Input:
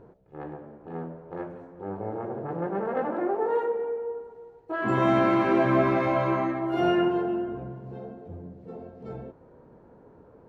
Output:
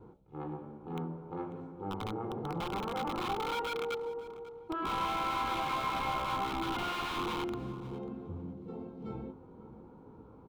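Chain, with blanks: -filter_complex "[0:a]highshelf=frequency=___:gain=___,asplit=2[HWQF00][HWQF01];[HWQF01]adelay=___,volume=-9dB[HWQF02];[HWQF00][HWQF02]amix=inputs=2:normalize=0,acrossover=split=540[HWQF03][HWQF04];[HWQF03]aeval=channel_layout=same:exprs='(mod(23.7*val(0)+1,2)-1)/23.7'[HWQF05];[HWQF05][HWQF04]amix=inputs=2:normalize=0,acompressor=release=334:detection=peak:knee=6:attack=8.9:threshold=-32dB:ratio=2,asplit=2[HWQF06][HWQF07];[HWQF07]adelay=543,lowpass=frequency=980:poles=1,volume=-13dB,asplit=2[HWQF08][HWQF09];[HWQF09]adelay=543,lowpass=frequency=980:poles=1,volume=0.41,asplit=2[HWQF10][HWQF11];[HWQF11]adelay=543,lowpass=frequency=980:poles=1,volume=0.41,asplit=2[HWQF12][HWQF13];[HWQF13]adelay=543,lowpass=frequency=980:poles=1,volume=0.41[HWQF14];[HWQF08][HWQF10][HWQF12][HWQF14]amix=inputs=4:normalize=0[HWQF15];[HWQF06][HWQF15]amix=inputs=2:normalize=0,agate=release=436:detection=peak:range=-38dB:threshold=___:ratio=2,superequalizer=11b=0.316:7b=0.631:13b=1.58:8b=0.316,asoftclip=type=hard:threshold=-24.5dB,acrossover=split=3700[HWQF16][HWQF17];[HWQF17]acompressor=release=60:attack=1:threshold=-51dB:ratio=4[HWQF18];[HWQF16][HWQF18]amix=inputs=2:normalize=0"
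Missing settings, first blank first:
2700, -4.5, 19, -54dB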